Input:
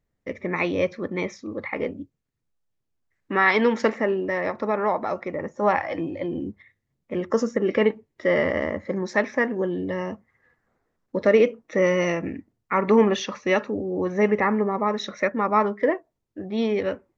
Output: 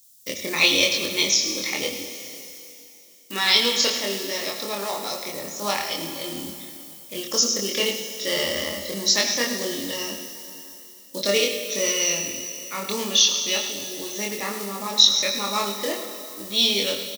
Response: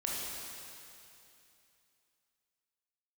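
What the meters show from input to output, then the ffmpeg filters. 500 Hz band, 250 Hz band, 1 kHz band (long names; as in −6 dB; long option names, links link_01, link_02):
−6.5 dB, −7.0 dB, −6.0 dB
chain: -filter_complex "[0:a]acrusher=bits=9:mode=log:mix=0:aa=0.000001,highpass=70,highshelf=frequency=6100:gain=10,asplit=2[link_01][link_02];[link_02]adelay=25,volume=-2dB[link_03];[link_01][link_03]amix=inputs=2:normalize=0,aecho=1:1:105:0.237,aexciter=amount=15.2:drive=3.8:freq=3000,dynaudnorm=framelen=260:gausssize=11:maxgain=11.5dB,highshelf=frequency=2300:gain=10.5,asplit=2[link_04][link_05];[1:a]atrim=start_sample=2205[link_06];[link_05][link_06]afir=irnorm=-1:irlink=0,volume=-8dB[link_07];[link_04][link_07]amix=inputs=2:normalize=0,acrossover=split=5100[link_08][link_09];[link_09]acompressor=threshold=-28dB:ratio=4:attack=1:release=60[link_10];[link_08][link_10]amix=inputs=2:normalize=0,volume=-8dB"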